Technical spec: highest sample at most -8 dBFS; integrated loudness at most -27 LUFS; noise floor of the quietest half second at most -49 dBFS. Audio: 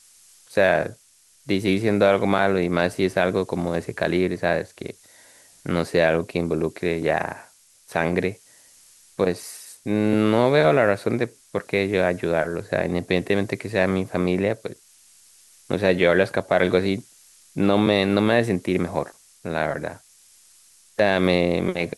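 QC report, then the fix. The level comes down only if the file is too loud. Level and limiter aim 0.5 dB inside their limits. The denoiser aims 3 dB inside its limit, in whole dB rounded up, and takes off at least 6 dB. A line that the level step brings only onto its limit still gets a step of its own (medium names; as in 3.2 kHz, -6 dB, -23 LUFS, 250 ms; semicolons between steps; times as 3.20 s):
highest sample -4.5 dBFS: fail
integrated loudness -22.0 LUFS: fail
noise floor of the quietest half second -57 dBFS: pass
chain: trim -5.5 dB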